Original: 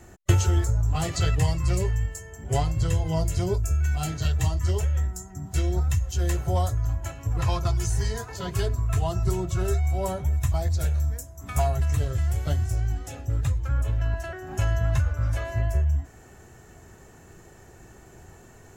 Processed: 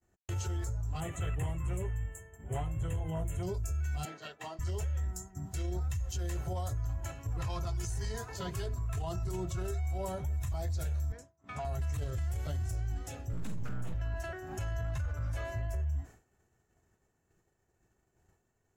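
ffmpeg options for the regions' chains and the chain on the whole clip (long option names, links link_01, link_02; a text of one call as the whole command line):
ffmpeg -i in.wav -filter_complex "[0:a]asettb=1/sr,asplit=3[link_01][link_02][link_03];[link_01]atrim=end=1.004[link_04];[link_02]atrim=start=1:end=3.43,asetpts=PTS-STARTPTS,afade=type=in:duration=0.004:curve=qsin,afade=type=out:start_time=2.426:duration=0.004:curve=qsin,volume=17.5dB,asoftclip=hard,volume=-17.5dB,asuperstop=centerf=4800:order=4:qfactor=1.1[link_05];[link_03]atrim=start=3.426[link_06];[link_04][link_05]acrossfade=duration=0.004:curve1=hsin:curve2=qsin[link_07];[link_07][link_06]acrossfade=duration=0.004:curve1=qsin:curve2=hsin,asettb=1/sr,asplit=3[link_08][link_09][link_10];[link_08]atrim=end=4.054[link_11];[link_09]atrim=start=4.05:end=4.59,asetpts=PTS-STARTPTS,afade=type=in:duration=0.004:curve=qsin,afade=type=out:start_time=0.536:duration=0.004:curve=qsin,highpass=frequency=180:width=0.5412,highpass=frequency=180:width=1.3066,bass=frequency=250:gain=-13,treble=frequency=4000:gain=-14[link_12];[link_10]atrim=start=4.586[link_13];[link_11][link_12]acrossfade=duration=0.004:curve1=hsin:curve2=qsin[link_14];[link_14][link_13]acrossfade=duration=0.004:curve1=qsin:curve2=hsin,asettb=1/sr,asplit=3[link_15][link_16][link_17];[link_15]atrim=end=11.124[link_18];[link_16]atrim=start=11.12:end=11.65,asetpts=PTS-STARTPTS,afade=type=in:duration=0.004:curve=qsin,afade=type=out:start_time=0.526:duration=0.004:curve=qsin,highpass=150,lowpass=3900,acompressor=threshold=-32dB:ratio=2.5:attack=3.2:release=140:knee=1:detection=peak[link_19];[link_17]atrim=start=11.646[link_20];[link_18][link_19]acrossfade=duration=0.004:curve1=hsin:curve2=qsin[link_21];[link_21][link_20]acrossfade=duration=0.004:curve1=qsin:curve2=hsin,asettb=1/sr,asplit=3[link_22][link_23][link_24];[link_22]atrim=end=13.334[link_25];[link_23]atrim=start=13.33:end=13.94,asetpts=PTS-STARTPTS,afade=type=in:duration=0.004:curve=qsin,afade=type=out:start_time=0.606:duration=0.004:curve=qsin,aeval=exprs='abs(val(0))':channel_layout=same,asplit=2[link_26][link_27];[link_27]adelay=48,volume=-6dB[link_28];[link_26][link_28]amix=inputs=2:normalize=0,atrim=end_sample=26901[link_29];[link_24]atrim=start=13.936[link_30];[link_25][link_29]acrossfade=duration=0.004:curve1=hsin:curve2=qsin[link_31];[link_31][link_30]acrossfade=duration=0.004:curve1=qsin:curve2=hsin,agate=range=-33dB:threshold=-37dB:ratio=3:detection=peak,dynaudnorm=framelen=700:gausssize=9:maxgain=4dB,alimiter=limit=-19dB:level=0:latency=1:release=33,volume=-9dB" out.wav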